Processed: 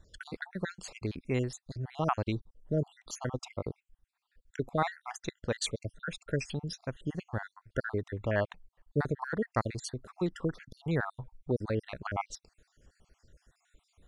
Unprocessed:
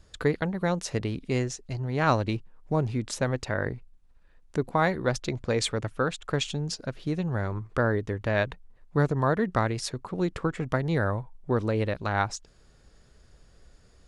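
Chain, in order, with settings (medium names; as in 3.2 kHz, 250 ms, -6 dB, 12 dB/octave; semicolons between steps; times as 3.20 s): random holes in the spectrogram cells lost 56%; trim -3.5 dB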